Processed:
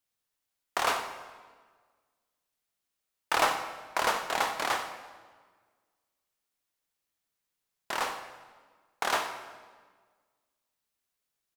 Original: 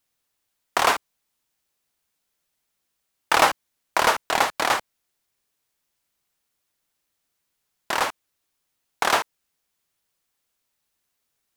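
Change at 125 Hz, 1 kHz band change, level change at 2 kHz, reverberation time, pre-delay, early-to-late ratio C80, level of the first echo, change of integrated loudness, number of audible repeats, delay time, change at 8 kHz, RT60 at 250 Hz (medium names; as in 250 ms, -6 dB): -8.5 dB, -7.5 dB, -7.5 dB, 1.5 s, 9 ms, 8.5 dB, -12.5 dB, -8.0 dB, 1, 93 ms, -7.5 dB, 1.7 s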